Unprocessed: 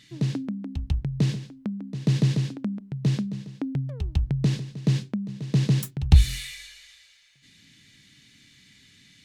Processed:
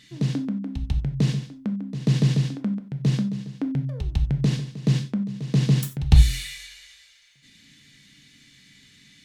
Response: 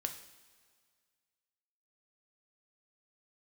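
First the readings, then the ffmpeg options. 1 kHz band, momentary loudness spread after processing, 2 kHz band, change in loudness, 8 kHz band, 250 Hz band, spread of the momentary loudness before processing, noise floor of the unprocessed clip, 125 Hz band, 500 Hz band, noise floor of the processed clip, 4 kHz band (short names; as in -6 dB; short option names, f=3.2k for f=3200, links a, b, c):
+2.0 dB, 10 LU, +2.0 dB, +2.0 dB, +2.0 dB, +3.0 dB, 13 LU, -57 dBFS, +1.5 dB, +2.0 dB, -55 dBFS, +2.0 dB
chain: -filter_complex "[1:a]atrim=start_sample=2205,atrim=end_sample=4410[a];[0:a][a]afir=irnorm=-1:irlink=0,volume=2dB"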